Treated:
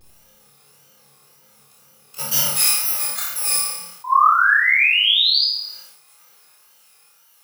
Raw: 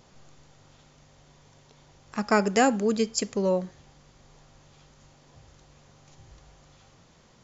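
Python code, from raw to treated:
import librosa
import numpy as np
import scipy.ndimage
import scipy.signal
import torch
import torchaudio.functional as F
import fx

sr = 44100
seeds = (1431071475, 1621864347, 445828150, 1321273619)

y = fx.bit_reversed(x, sr, seeds[0], block=128)
y = fx.highpass(y, sr, hz=fx.steps((0.0, 350.0), (2.49, 910.0)), slope=12)
y = fx.wow_flutter(y, sr, seeds[1], rate_hz=2.1, depth_cents=130.0)
y = fx.spec_paint(y, sr, seeds[2], shape='rise', start_s=4.04, length_s=1.41, low_hz=990.0, high_hz=5000.0, level_db=-22.0)
y = fx.room_flutter(y, sr, wall_m=4.9, rt60_s=0.55)
y = fx.room_shoebox(y, sr, seeds[3], volume_m3=930.0, walls='furnished', distance_m=3.9)
y = fx.sustainer(y, sr, db_per_s=63.0)
y = F.gain(torch.from_numpy(y), -1.5).numpy()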